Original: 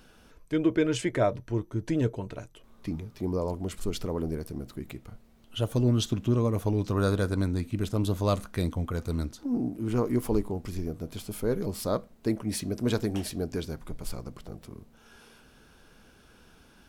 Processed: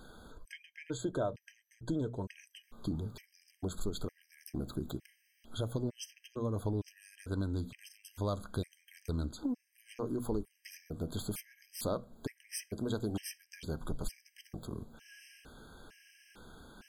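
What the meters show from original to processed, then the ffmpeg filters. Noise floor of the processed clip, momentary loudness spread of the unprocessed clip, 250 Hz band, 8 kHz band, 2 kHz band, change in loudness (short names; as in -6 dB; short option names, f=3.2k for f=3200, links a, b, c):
-75 dBFS, 14 LU, -10.0 dB, -6.0 dB, -10.0 dB, -10.0 dB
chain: -af "acompressor=threshold=-35dB:ratio=5,bandreject=f=60:t=h:w=6,bandreject=f=120:t=h:w=6,bandreject=f=180:t=h:w=6,bandreject=f=240:t=h:w=6,afftfilt=real='re*gt(sin(2*PI*1.1*pts/sr)*(1-2*mod(floor(b*sr/1024/1600),2)),0)':imag='im*gt(sin(2*PI*1.1*pts/sr)*(1-2*mod(floor(b*sr/1024/1600),2)),0)':win_size=1024:overlap=0.75,volume=3.5dB"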